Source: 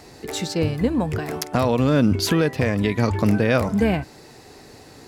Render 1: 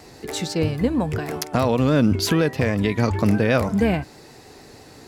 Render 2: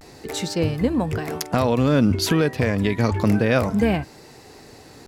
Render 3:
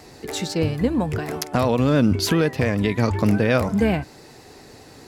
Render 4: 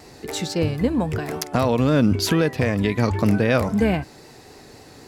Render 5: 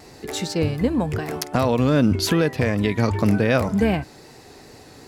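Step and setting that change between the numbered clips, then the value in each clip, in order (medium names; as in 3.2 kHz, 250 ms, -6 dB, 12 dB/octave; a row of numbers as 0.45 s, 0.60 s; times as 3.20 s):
vibrato, rate: 6.3 Hz, 0.3 Hz, 9.8 Hz, 3.8 Hz, 2.6 Hz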